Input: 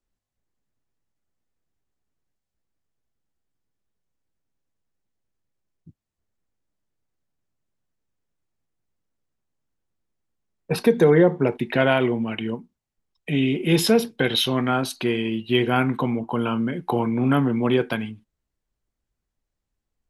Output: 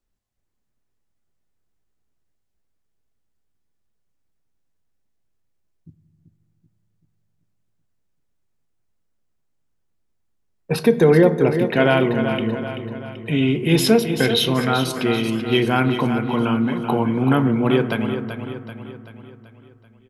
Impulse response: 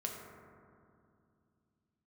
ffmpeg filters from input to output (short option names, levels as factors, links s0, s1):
-filter_complex "[0:a]aecho=1:1:384|768|1152|1536|1920|2304:0.355|0.177|0.0887|0.0444|0.0222|0.0111,asplit=2[s0][s1];[1:a]atrim=start_sample=2205,lowshelf=f=110:g=10[s2];[s1][s2]afir=irnorm=-1:irlink=0,volume=0.316[s3];[s0][s3]amix=inputs=2:normalize=0"